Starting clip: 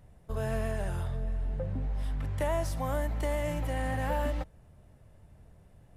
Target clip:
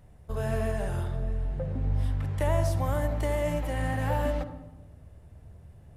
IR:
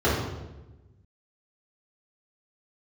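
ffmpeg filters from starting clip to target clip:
-filter_complex "[0:a]asplit=2[s0][s1];[1:a]atrim=start_sample=2205,adelay=57[s2];[s1][s2]afir=irnorm=-1:irlink=0,volume=0.0473[s3];[s0][s3]amix=inputs=2:normalize=0,volume=1.19"

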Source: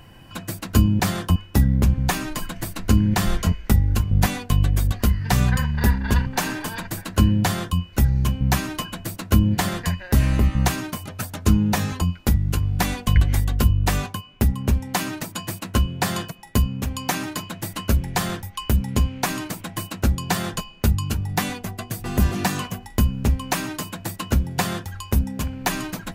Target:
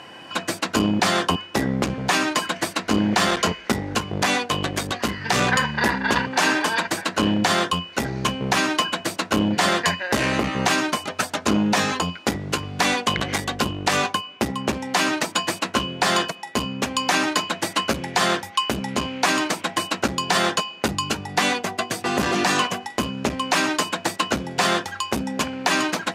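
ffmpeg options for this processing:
-af "aeval=exprs='clip(val(0),-1,0.15)':c=same,highpass=360,lowpass=6600,alimiter=level_in=7.5:limit=0.891:release=50:level=0:latency=1,volume=0.447"

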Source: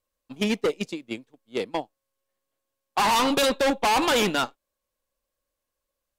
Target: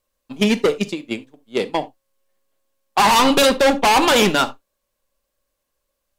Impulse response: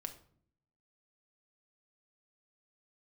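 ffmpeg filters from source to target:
-filter_complex "[0:a]asplit=2[s0][s1];[1:a]atrim=start_sample=2205,atrim=end_sample=3969[s2];[s1][s2]afir=irnorm=-1:irlink=0,volume=1.88[s3];[s0][s3]amix=inputs=2:normalize=0"

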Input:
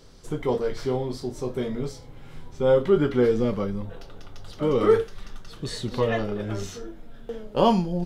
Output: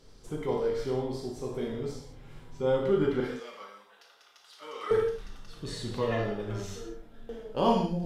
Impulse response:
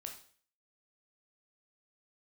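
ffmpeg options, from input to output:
-filter_complex "[0:a]asettb=1/sr,asplit=3[s0][s1][s2];[s0]atrim=end=3.204[s3];[s1]atrim=start=3.2:end=4.91,asetpts=PTS-STARTPTS,afade=t=in:d=0.004:c=qsin,afade=t=out:st=1.706:d=0.004:c=qsin,highpass=1200[s4];[s2]atrim=start=4.906[s5];[s3][s4]acrossfade=d=0.004:c1=hsin:c2=qsin[s6];[s6][s5]acrossfade=d=0.004:c1=qsin:c2=hsin[s7];[1:a]atrim=start_sample=2205,afade=t=out:st=0.18:d=0.01,atrim=end_sample=8379,asetrate=29106,aresample=44100[s8];[s7][s8]afir=irnorm=-1:irlink=0,volume=0.668"

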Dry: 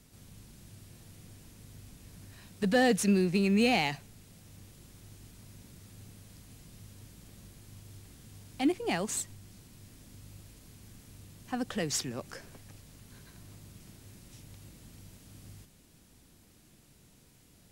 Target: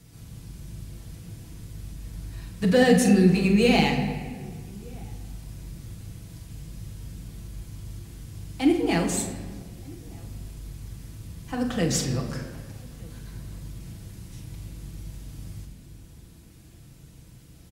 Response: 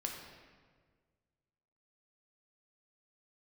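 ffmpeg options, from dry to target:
-filter_complex "[0:a]highpass=41,lowshelf=f=100:g=8,asplit=2[s0][s1];[s1]adelay=44,volume=0.299[s2];[s0][s2]amix=inputs=2:normalize=0,asplit=2[s3][s4];[s4]adelay=1224,volume=0.0562,highshelf=f=4000:g=-27.6[s5];[s3][s5]amix=inputs=2:normalize=0,asplit=2[s6][s7];[1:a]atrim=start_sample=2205,lowshelf=f=160:g=10.5,adelay=6[s8];[s7][s8]afir=irnorm=-1:irlink=0,volume=0.944[s9];[s6][s9]amix=inputs=2:normalize=0,volume=1.26"

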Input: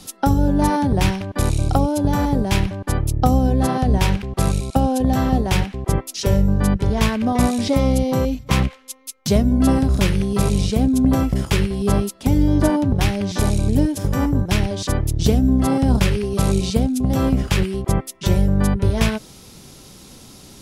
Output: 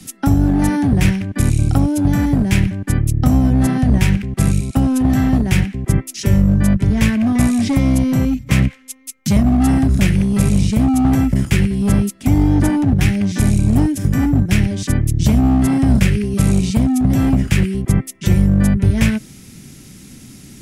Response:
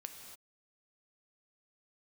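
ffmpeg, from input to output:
-filter_complex "[0:a]equalizer=f=125:t=o:w=1:g=5,equalizer=f=250:t=o:w=1:g=7,equalizer=f=500:t=o:w=1:g=-7,equalizer=f=1000:t=o:w=1:g=-9,equalizer=f=2000:t=o:w=1:g=7,equalizer=f=4000:t=o:w=1:g=-6,equalizer=f=8000:t=o:w=1:g=3,acrossover=split=140|760|3700[s0][s1][s2][s3];[s1]asoftclip=type=hard:threshold=0.168[s4];[s0][s4][s2][s3]amix=inputs=4:normalize=0,volume=1.12"

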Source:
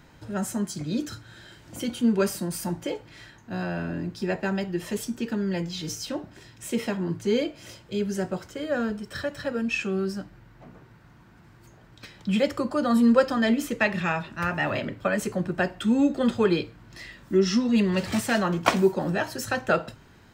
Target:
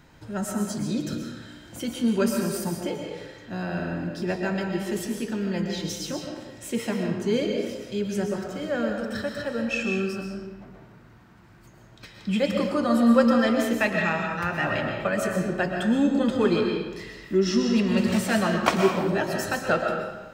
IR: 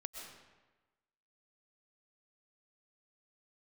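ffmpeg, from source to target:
-filter_complex "[1:a]atrim=start_sample=2205[s0];[0:a][s0]afir=irnorm=-1:irlink=0,volume=1.5"

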